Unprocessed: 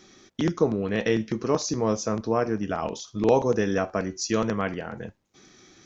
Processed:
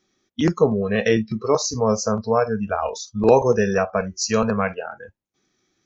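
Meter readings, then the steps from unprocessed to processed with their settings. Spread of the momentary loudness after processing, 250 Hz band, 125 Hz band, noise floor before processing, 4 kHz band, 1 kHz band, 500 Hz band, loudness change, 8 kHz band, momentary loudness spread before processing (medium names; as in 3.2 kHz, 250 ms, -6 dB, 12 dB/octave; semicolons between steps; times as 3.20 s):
9 LU, +3.5 dB, +4.5 dB, -62 dBFS, +5.0 dB, +6.0 dB, +5.5 dB, +5.0 dB, no reading, 10 LU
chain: spectral noise reduction 22 dB; trim +6 dB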